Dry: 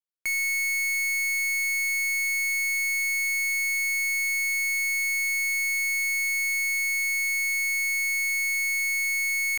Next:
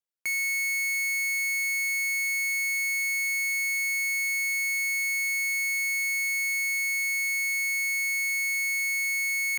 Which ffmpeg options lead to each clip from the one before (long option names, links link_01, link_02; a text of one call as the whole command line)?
ffmpeg -i in.wav -af "highpass=77,volume=-1.5dB" out.wav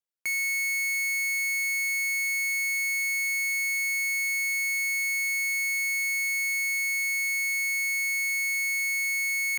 ffmpeg -i in.wav -af anull out.wav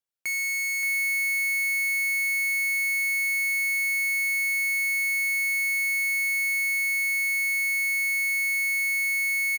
ffmpeg -i in.wav -af "aecho=1:1:576:0.562" out.wav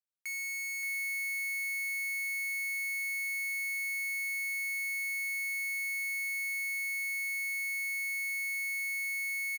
ffmpeg -i in.wav -af "highpass=1300,volume=-9dB" out.wav